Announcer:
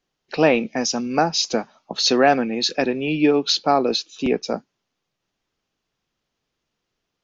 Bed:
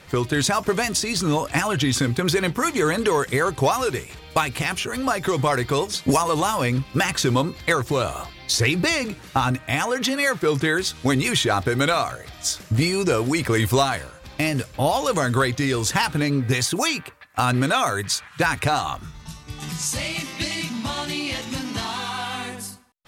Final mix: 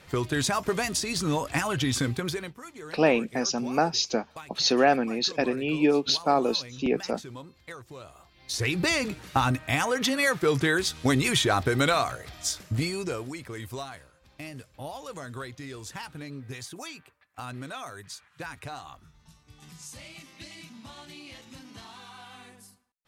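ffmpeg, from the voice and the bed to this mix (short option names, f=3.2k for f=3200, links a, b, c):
-filter_complex "[0:a]adelay=2600,volume=-5dB[a];[1:a]volume=13.5dB,afade=t=out:st=2.06:d=0.49:silence=0.149624,afade=t=in:st=8.29:d=0.68:silence=0.112202,afade=t=out:st=12.17:d=1.24:silence=0.177828[b];[a][b]amix=inputs=2:normalize=0"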